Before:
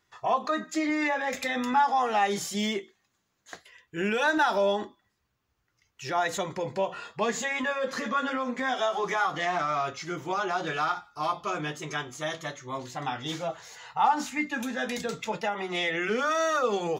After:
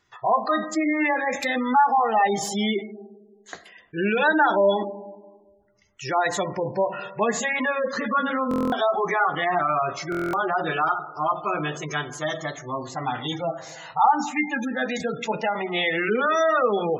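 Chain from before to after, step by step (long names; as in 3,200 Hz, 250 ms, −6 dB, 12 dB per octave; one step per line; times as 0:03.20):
comb and all-pass reverb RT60 1.4 s, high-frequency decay 0.3×, pre-delay 10 ms, DRR 12 dB
gate on every frequency bin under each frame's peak −20 dB strong
buffer that repeats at 0:08.49/0:10.10, samples 1,024, times 9
level +5 dB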